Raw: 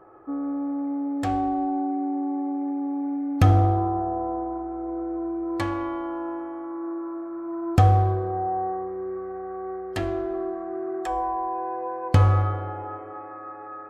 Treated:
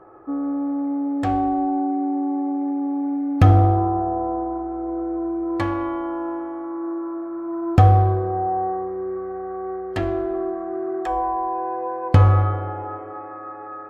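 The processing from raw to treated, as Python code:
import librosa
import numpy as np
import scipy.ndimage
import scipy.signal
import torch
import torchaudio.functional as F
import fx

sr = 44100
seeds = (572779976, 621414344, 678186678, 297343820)

y = fx.high_shelf(x, sr, hz=4600.0, db=-11.5)
y = y * librosa.db_to_amplitude(4.0)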